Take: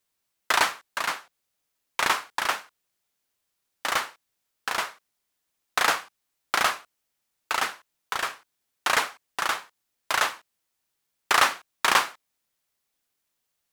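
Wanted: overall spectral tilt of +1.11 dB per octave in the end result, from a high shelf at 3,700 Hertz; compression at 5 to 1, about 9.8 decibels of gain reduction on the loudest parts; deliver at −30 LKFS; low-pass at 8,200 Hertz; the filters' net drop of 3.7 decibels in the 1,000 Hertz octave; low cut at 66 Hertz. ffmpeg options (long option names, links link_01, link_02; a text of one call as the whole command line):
ffmpeg -i in.wav -af "highpass=66,lowpass=8200,equalizer=frequency=1000:width_type=o:gain=-5.5,highshelf=frequency=3700:gain=7,acompressor=threshold=-28dB:ratio=5,volume=3.5dB" out.wav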